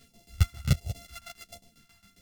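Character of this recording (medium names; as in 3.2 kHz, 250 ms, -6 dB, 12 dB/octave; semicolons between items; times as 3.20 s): a buzz of ramps at a fixed pitch in blocks of 64 samples; phasing stages 2, 1.4 Hz, lowest notch 460–1300 Hz; tremolo saw down 7.4 Hz, depth 90%; a shimmering, thickened sound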